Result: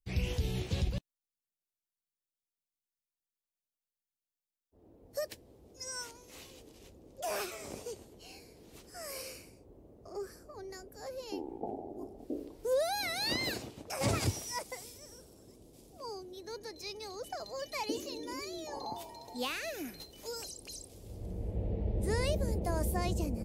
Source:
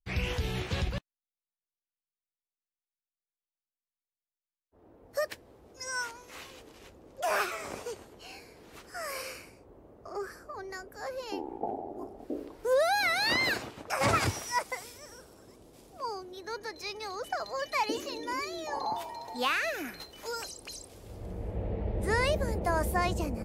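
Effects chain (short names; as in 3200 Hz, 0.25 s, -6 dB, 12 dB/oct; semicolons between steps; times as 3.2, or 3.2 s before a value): bell 1400 Hz -13.5 dB 1.9 oct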